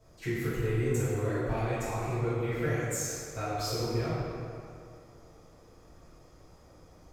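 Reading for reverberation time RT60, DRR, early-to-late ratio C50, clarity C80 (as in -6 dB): 2.5 s, -12.5 dB, -3.0 dB, -1.0 dB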